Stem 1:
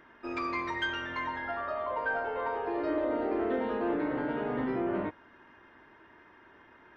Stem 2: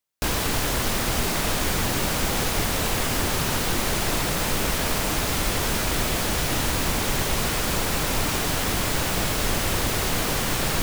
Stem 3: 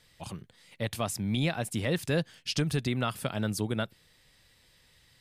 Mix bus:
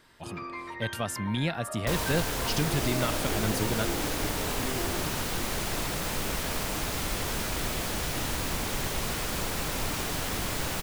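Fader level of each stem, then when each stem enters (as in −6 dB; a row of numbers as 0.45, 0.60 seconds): −5.5, −7.0, −0.5 decibels; 0.00, 1.65, 0.00 seconds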